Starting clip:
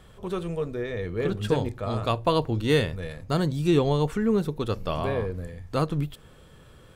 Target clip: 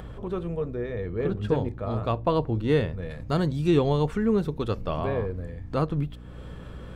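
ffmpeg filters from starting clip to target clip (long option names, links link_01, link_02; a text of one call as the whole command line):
ffmpeg -i in.wav -af "asetnsamples=nb_out_samples=441:pad=0,asendcmd='3.1 lowpass f 3900;4.81 lowpass f 2000',lowpass=frequency=1300:poles=1,acompressor=mode=upward:threshold=-32dB:ratio=2.5,aeval=exprs='val(0)+0.00891*(sin(2*PI*60*n/s)+sin(2*PI*2*60*n/s)/2+sin(2*PI*3*60*n/s)/3+sin(2*PI*4*60*n/s)/4+sin(2*PI*5*60*n/s)/5)':channel_layout=same" out.wav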